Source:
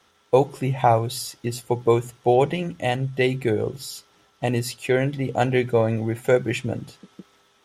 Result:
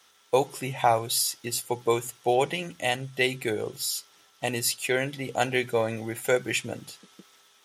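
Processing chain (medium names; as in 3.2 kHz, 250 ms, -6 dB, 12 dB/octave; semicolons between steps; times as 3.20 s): tilt EQ +3 dB/octave; trim -2.5 dB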